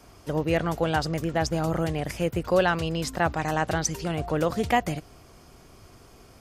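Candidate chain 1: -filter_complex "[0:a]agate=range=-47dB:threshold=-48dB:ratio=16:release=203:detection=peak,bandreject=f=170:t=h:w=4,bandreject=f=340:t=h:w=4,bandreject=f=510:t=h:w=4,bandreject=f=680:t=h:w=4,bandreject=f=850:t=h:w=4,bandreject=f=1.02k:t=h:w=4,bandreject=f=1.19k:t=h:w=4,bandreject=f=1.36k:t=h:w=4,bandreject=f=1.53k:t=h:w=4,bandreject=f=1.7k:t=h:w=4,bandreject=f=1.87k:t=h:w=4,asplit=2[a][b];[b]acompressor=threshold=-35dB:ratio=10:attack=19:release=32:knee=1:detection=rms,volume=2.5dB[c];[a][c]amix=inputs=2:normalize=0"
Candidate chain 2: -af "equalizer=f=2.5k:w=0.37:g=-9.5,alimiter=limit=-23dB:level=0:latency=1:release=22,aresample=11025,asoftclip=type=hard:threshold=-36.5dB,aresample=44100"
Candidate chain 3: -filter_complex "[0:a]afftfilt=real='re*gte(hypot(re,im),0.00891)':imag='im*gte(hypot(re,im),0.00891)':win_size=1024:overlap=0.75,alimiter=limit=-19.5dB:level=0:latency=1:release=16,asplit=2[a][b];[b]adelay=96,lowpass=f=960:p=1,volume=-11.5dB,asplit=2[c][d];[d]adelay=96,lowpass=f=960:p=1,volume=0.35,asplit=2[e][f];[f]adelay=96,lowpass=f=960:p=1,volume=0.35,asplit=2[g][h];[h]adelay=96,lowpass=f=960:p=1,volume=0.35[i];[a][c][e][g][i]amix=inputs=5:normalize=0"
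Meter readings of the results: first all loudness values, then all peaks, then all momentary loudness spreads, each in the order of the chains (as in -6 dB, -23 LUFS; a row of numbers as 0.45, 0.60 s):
-23.5, -39.5, -29.5 LUFS; -7.5, -32.0, -17.5 dBFS; 5, 16, 3 LU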